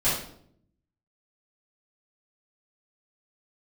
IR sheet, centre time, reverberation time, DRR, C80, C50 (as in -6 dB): 47 ms, 0.65 s, -14.0 dB, 7.0 dB, 2.0 dB